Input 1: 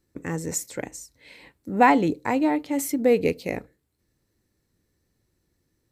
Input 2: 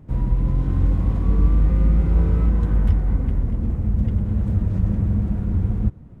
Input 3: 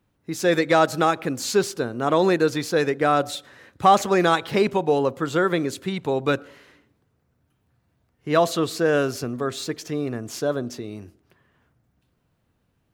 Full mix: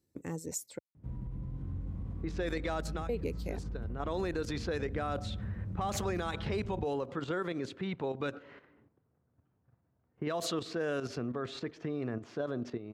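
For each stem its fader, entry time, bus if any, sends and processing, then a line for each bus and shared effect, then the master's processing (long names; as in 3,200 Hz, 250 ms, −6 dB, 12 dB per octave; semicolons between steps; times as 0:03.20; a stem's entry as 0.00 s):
−5.5 dB, 0.00 s, muted 0:00.79–0:03.09, bus A, no send, parametric band 1,700 Hz −7.5 dB 1.4 octaves; reverb reduction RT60 0.69 s
−19.5 dB, 0.95 s, no bus, no send, low-shelf EQ 290 Hz +8 dB; brickwall limiter −6 dBFS, peak gain reduction 6.5 dB
+2.0 dB, 1.95 s, bus A, no send, low-pass that shuts in the quiet parts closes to 1,300 Hz, open at −14 dBFS; output level in coarse steps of 11 dB; automatic ducking −20 dB, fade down 0.35 s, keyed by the first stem
bus A: 0.0 dB, brickwall limiter −20.5 dBFS, peak gain reduction 12 dB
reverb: not used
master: high-pass filter 66 Hz; downward compressor 1.5 to 1, threshold −39 dBFS, peak gain reduction 5.5 dB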